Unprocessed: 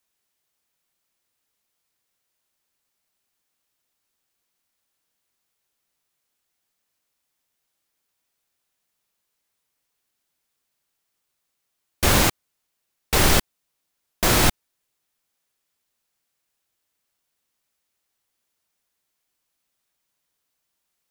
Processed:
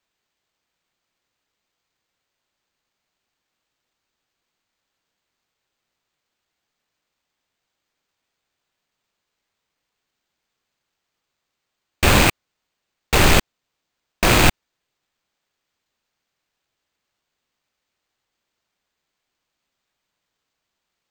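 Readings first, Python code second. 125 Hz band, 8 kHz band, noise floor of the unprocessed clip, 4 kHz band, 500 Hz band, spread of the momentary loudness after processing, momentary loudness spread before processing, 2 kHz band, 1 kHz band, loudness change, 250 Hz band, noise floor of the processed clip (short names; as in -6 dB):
+4.0 dB, -0.5 dB, -78 dBFS, +2.5 dB, +4.0 dB, 6 LU, 6 LU, +5.5 dB, +4.0 dB, +3.0 dB, +4.0 dB, -80 dBFS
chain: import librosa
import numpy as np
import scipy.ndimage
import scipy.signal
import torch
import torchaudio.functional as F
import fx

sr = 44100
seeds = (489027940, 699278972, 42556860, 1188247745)

y = fx.rattle_buzz(x, sr, strikes_db=-28.0, level_db=-11.0)
y = np.repeat(scipy.signal.resample_poly(y, 1, 4), 4)[:len(y)]
y = F.gain(torch.from_numpy(y), 4.0).numpy()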